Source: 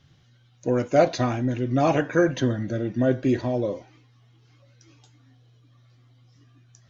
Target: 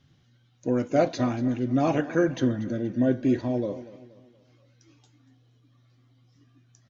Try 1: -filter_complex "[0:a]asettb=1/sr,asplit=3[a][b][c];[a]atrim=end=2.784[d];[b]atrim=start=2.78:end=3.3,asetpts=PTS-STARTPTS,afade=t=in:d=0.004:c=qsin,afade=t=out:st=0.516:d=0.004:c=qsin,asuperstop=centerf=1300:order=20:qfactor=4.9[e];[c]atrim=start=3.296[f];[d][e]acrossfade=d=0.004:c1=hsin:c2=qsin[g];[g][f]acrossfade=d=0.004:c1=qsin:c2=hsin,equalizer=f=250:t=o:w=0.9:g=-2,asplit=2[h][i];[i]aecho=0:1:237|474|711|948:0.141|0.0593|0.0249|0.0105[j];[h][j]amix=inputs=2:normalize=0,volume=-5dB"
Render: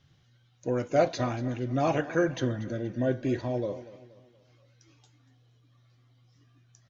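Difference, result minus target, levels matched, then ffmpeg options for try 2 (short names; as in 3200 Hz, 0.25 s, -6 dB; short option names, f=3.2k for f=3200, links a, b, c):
250 Hz band -3.0 dB
-filter_complex "[0:a]asettb=1/sr,asplit=3[a][b][c];[a]atrim=end=2.784[d];[b]atrim=start=2.78:end=3.3,asetpts=PTS-STARTPTS,afade=t=in:d=0.004:c=qsin,afade=t=out:st=0.516:d=0.004:c=qsin,asuperstop=centerf=1300:order=20:qfactor=4.9[e];[c]atrim=start=3.296[f];[d][e]acrossfade=d=0.004:c1=hsin:c2=qsin[g];[g][f]acrossfade=d=0.004:c1=qsin:c2=hsin,equalizer=f=250:t=o:w=0.9:g=6,asplit=2[h][i];[i]aecho=0:1:237|474|711|948:0.141|0.0593|0.0249|0.0105[j];[h][j]amix=inputs=2:normalize=0,volume=-5dB"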